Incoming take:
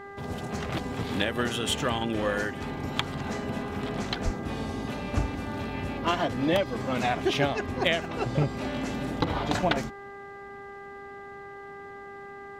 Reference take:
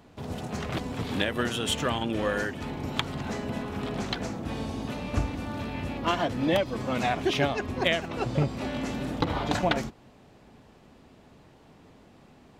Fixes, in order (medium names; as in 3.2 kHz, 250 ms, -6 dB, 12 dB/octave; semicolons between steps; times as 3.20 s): de-hum 399.3 Hz, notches 5; 4.24–4.36 s: high-pass 140 Hz 24 dB/octave